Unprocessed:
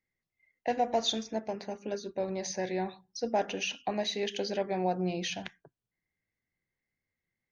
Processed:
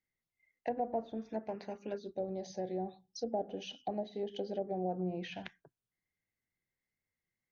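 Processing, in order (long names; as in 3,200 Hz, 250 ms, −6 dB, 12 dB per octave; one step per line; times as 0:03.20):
gain on a spectral selection 0:01.98–0:04.89, 840–2,900 Hz −12 dB
treble cut that deepens with the level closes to 710 Hz, closed at −26.5 dBFS
level −4.5 dB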